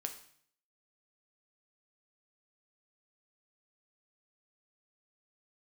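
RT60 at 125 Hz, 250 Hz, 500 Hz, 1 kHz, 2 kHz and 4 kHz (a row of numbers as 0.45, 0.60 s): 0.75, 0.65, 0.60, 0.60, 0.60, 0.60 s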